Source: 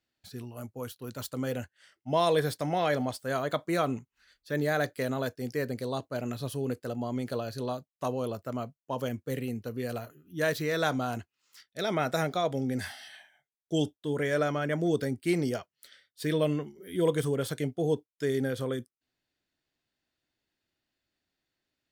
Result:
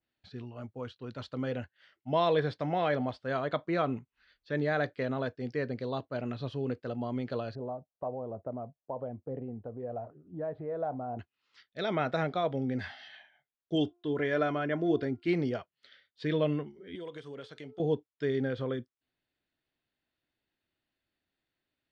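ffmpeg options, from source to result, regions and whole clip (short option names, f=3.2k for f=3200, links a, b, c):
-filter_complex "[0:a]asettb=1/sr,asplit=3[a][b][c];[a]atrim=end=7.554[d];[b]atrim=start=7.55:end=11.19,asetpts=PTS-STARTPTS,afade=t=in:d=0.004:c=qsin,afade=t=out:st=3.636:d=0.004:c=qsin,acompressor=threshold=-41dB:ratio=2:attack=3.2:release=140:knee=1:detection=peak,lowpass=f=730:t=q:w=2.7,aphaser=in_gain=1:out_gain=1:delay=2.1:decay=0.22:speed=1.1:type=triangular[e];[c]atrim=start=11.186[f];[d][e]acrossfade=d=0.004:c1=hsin:c2=qsin[g];[g][f]acrossfade=d=0.004:c1=qsin:c2=hsin,asettb=1/sr,asplit=3[h][i][j];[h]atrim=end=13.754[k];[i]atrim=start=13.75:end=15.28,asetpts=PTS-STARTPTS,afade=t=in:d=0.004:c=qsin,afade=t=out:st=1.526:d=0.004:c=qsin,aecho=1:1:2.9:0.39,atrim=end_sample=67473,bandreject=f=350.2:t=h:w=4,bandreject=f=700.4:t=h:w=4,bandreject=f=1.0506k:t=h:w=4,bandreject=f=1.4008k:t=h:w=4[l];[j]atrim=start=15.276[m];[k][l]acrossfade=d=0.004:c1=hsin:c2=qsin[n];[n][m]acrossfade=d=0.004:c1=qsin:c2=hsin,asettb=1/sr,asplit=3[o][p][q];[o]atrim=end=16.954[r];[p]atrim=start=16.95:end=17.8,asetpts=PTS-STARTPTS,afade=t=in:d=0.004:c=qsin,afade=t=out:st=0.846:d=0.004:c=qsin,aemphasis=mode=production:type=bsi,bandreject=f=434.3:t=h:w=4,bandreject=f=868.6:t=h:w=4,bandreject=f=1.3029k:t=h:w=4,acompressor=threshold=-39dB:ratio=4:attack=3.2:release=140:knee=1:detection=peak[s];[q]atrim=start=17.796[t];[r][s]acrossfade=d=0.004:c1=hsin:c2=qsin[u];[u][t]acrossfade=d=0.004:c1=qsin:c2=hsin,lowpass=f=4.1k:w=0.5412,lowpass=f=4.1k:w=1.3066,adynamicequalizer=threshold=0.00631:dfrequency=2500:dqfactor=0.7:tfrequency=2500:tqfactor=0.7:attack=5:release=100:ratio=0.375:range=2:mode=cutabove:tftype=highshelf,volume=-1.5dB"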